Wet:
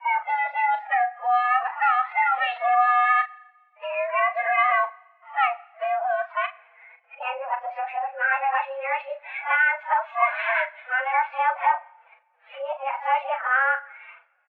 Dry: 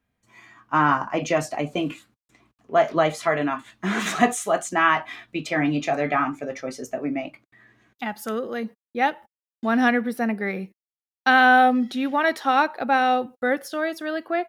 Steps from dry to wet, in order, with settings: reverse the whole clip; compression 2.5:1, threshold -27 dBFS, peak gain reduction 10.5 dB; formant-preserving pitch shift +11 st; doubling 38 ms -9 dB; two-slope reverb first 0.75 s, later 2.3 s, from -20 dB, DRR 17 dB; mistuned SSB +260 Hz 380–2300 Hz; trim +6.5 dB

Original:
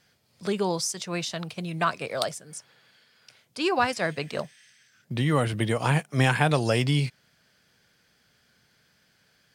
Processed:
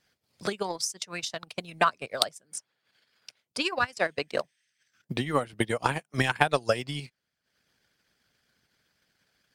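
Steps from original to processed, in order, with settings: harmonic-percussive split harmonic -10 dB; transient shaper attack +10 dB, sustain -11 dB; trim -3.5 dB

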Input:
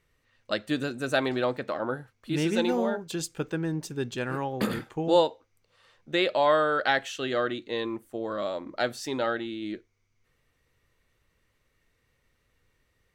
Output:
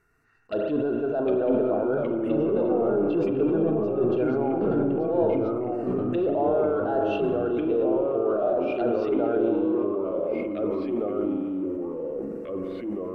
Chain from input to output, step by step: small resonant body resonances 430/670/1400/2700 Hz, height 17 dB, ringing for 25 ms; reverse; compression 6:1, threshold -21 dBFS, peak gain reduction 14 dB; reverse; saturation -17.5 dBFS, distortion -18 dB; touch-sensitive phaser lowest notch 540 Hz, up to 2.1 kHz, full sweep at -25 dBFS; low-pass that closes with the level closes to 1.2 kHz, closed at -26.5 dBFS; on a send at -6 dB: reverberation RT60 2.2 s, pre-delay 34 ms; on the sum: ever faster or slower copies 694 ms, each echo -2 st, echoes 2; decay stretcher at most 21 dB/s

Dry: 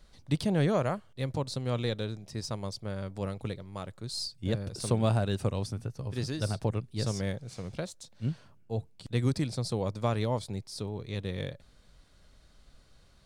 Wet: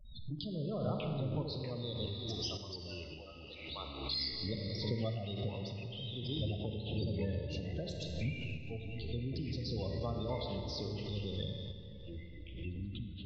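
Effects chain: median filter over 5 samples; peaking EQ 3.6 kHz +8.5 dB 0.6 oct; spectral gate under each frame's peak -15 dB strong; Schroeder reverb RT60 2.6 s, combs from 30 ms, DRR 3.5 dB; dynamic bell 5.9 kHz, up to +5 dB, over -53 dBFS, Q 0.87; 2.06–4.32 s: Bessel high-pass 1 kHz, order 2; compression 2:1, threshold -39 dBFS, peak gain reduction 9.5 dB; ever faster or slower copies 459 ms, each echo -5 st, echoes 2, each echo -6 dB; random-step tremolo; swell ahead of each attack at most 56 dB/s

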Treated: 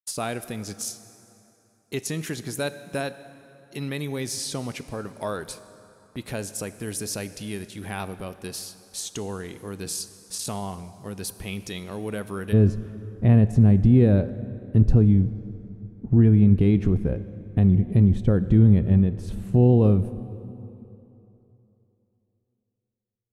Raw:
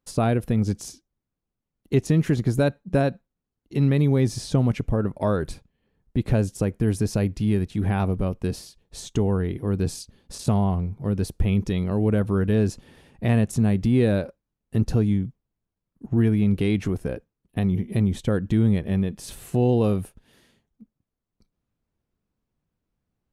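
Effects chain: expander -44 dBFS; tilt EQ +3.5 dB/octave, from 12.52 s -3 dB/octave; plate-style reverb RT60 3.2 s, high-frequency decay 0.7×, DRR 13 dB; trim -3.5 dB

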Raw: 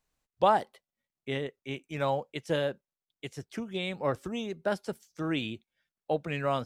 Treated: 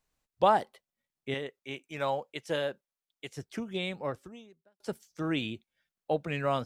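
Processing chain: 1.34–3.33 s: bass shelf 290 Hz -9 dB; 3.84–4.80 s: fade out quadratic

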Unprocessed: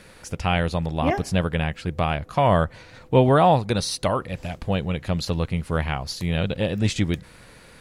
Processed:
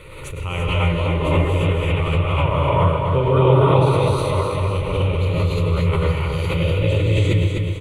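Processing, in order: tone controls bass +5 dB, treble -6 dB; static phaser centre 1.1 kHz, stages 8; on a send: feedback delay 253 ms, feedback 55%, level -4.5 dB; on the sum: gated-style reverb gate 370 ms rising, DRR -7.5 dB; swell ahead of each attack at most 40 dB/s; trim -4.5 dB

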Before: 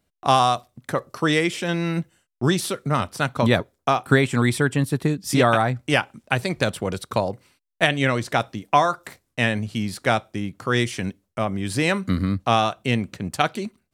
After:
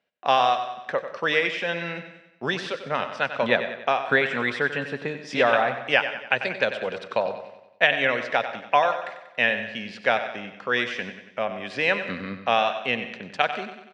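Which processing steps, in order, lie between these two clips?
cabinet simulation 320–4700 Hz, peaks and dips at 320 Hz -10 dB, 530 Hz +4 dB, 1.2 kHz -4 dB, 1.7 kHz +5 dB, 2.6 kHz +5 dB, 4.3 kHz -5 dB; feedback delay 94 ms, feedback 52%, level -11 dB; on a send at -15 dB: reverberation RT60 0.45 s, pre-delay 80 ms; on the sum: trim -2 dB

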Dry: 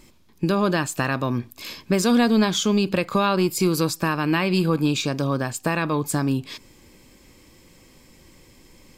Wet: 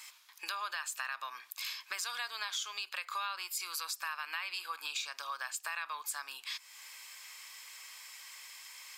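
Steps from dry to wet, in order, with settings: high-pass 1.1 kHz 24 dB/octave; in parallel at +1 dB: peak limiter -18.5 dBFS, peak gain reduction 7 dB; on the sum: compression 3:1, threshold -41 dBFS, peak gain reduction 18 dB

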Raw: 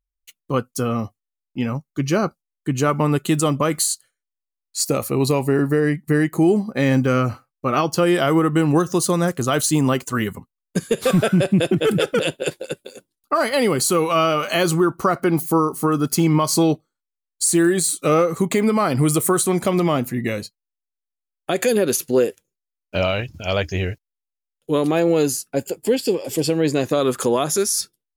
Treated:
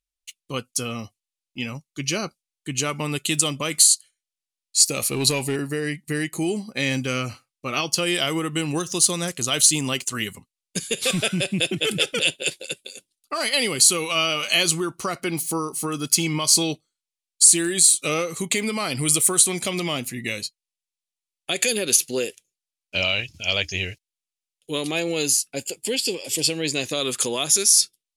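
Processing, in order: 4.97–5.56 s: waveshaping leveller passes 1; high-order bell 4.9 kHz +15.5 dB 2.7 oct; trim -9 dB

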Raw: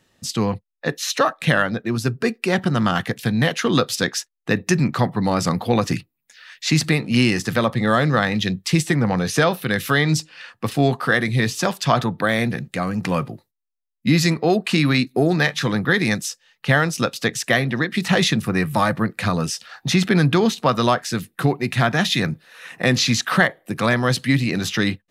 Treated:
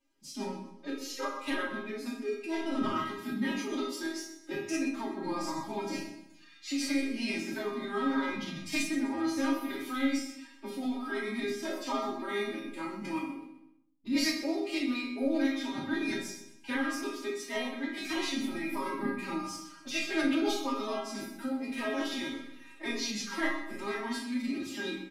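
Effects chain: flange 1.5 Hz, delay 9.3 ms, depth 1.5 ms, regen -81%; chord resonator D3 minor, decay 0.42 s; formant-preserving pitch shift +10.5 st; feedback delay 126 ms, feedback 37%, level -13.5 dB; simulated room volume 860 m³, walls furnished, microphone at 2.6 m; trim +3 dB

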